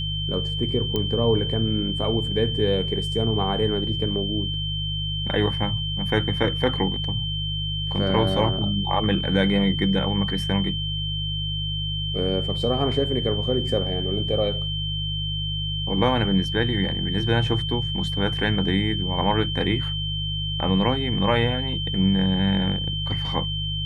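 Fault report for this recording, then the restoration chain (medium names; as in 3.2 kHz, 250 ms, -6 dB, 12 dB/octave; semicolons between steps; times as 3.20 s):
hum 50 Hz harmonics 3 -29 dBFS
whine 3.1 kHz -28 dBFS
0.96 s: pop -12 dBFS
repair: de-click; de-hum 50 Hz, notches 3; band-stop 3.1 kHz, Q 30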